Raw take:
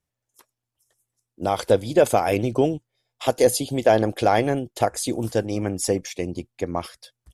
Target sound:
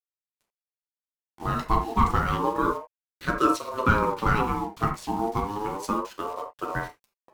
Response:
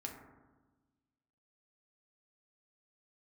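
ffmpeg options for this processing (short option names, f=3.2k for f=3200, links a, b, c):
-filter_complex "[0:a]adynamicsmooth=sensitivity=2.5:basefreq=2.8k,acrusher=bits=6:mix=0:aa=0.000001[a];[1:a]atrim=start_sample=2205,atrim=end_sample=3528,asetrate=37485,aresample=44100[b];[a][b]afir=irnorm=-1:irlink=0,aeval=exprs='val(0)*sin(2*PI*690*n/s+690*0.2/0.3*sin(2*PI*0.3*n/s))':c=same"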